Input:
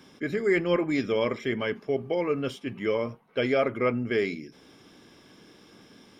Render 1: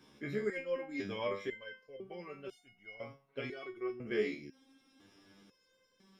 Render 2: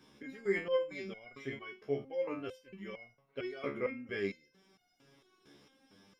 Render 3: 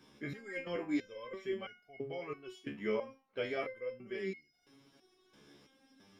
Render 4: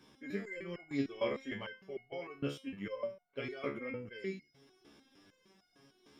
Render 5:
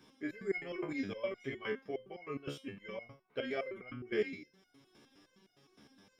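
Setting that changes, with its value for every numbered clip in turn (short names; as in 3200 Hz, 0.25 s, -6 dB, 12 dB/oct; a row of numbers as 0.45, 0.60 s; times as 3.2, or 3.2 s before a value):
stepped resonator, rate: 2, 4.4, 3, 6.6, 9.7 Hz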